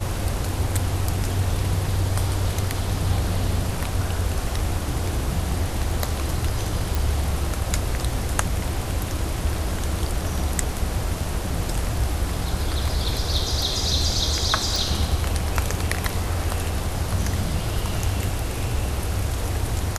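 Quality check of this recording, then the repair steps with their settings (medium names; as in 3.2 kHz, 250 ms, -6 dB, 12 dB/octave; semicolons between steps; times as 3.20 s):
6.95 s: pop
14.76 s: pop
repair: de-click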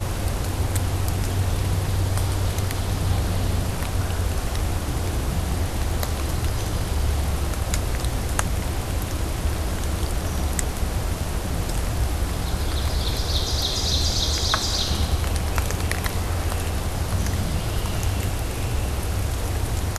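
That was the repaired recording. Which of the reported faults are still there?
nothing left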